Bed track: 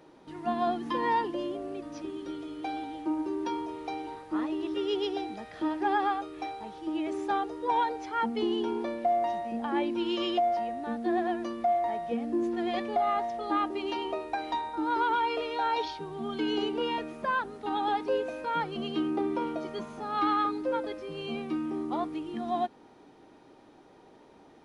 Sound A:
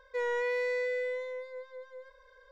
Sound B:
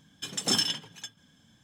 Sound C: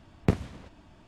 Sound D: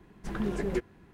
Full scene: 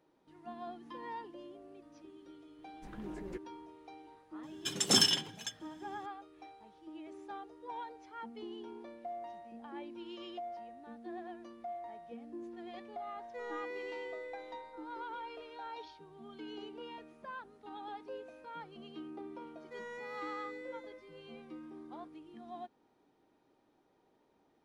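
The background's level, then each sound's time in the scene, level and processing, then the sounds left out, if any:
bed track −16.5 dB
0:02.58: mix in D −14.5 dB
0:04.43: mix in B
0:13.20: mix in A −12 dB
0:19.57: mix in A −14 dB + spectral tilt +1.5 dB per octave
not used: C

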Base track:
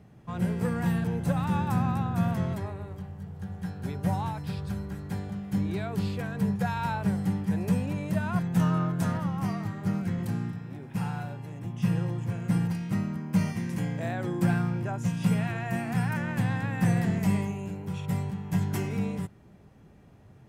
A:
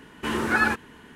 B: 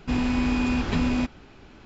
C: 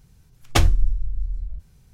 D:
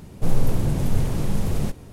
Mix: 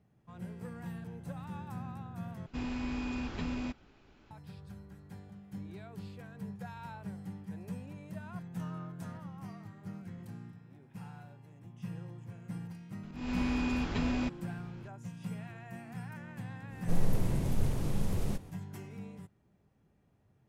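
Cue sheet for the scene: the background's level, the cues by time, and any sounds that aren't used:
base track −15.5 dB
0:02.46: overwrite with B −12.5 dB
0:13.03: mix in B −8 dB + volume swells 264 ms
0:16.66: mix in D −9 dB, fades 0.10 s
not used: A, C

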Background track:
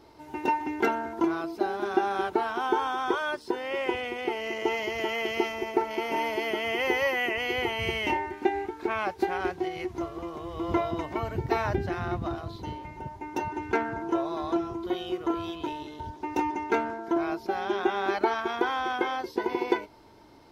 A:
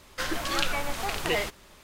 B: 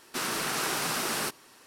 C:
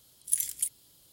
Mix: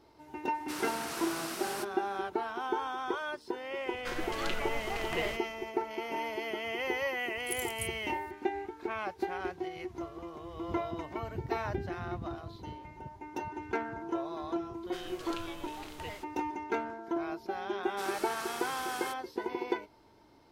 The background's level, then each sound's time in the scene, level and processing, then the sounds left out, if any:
background track −7 dB
0:00.54: mix in B −9.5 dB
0:03.87: mix in A −5.5 dB + high-shelf EQ 2,200 Hz −7.5 dB
0:07.19: mix in C −6 dB + downward compressor 1.5 to 1, threshold −35 dBFS
0:14.74: mix in A −17 dB
0:17.83: mix in B −13 dB + comb filter 2.3 ms, depth 48%

